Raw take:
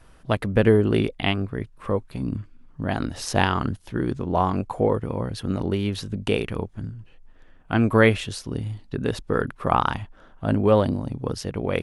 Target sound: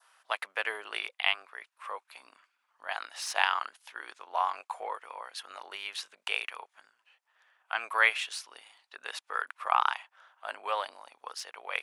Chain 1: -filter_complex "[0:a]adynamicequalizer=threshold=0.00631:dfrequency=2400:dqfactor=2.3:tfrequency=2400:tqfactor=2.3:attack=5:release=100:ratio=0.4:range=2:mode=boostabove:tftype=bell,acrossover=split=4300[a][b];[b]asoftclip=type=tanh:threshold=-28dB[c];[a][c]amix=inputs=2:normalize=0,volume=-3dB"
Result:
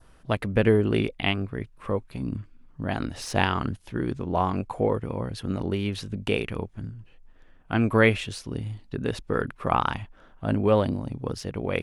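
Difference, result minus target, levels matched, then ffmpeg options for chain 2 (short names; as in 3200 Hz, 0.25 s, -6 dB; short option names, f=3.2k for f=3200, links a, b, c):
1000 Hz band -4.0 dB
-filter_complex "[0:a]adynamicequalizer=threshold=0.00631:dfrequency=2400:dqfactor=2.3:tfrequency=2400:tqfactor=2.3:attack=5:release=100:ratio=0.4:range=2:mode=boostabove:tftype=bell,highpass=f=840:w=0.5412,highpass=f=840:w=1.3066,acrossover=split=4300[a][b];[b]asoftclip=type=tanh:threshold=-28dB[c];[a][c]amix=inputs=2:normalize=0,volume=-3dB"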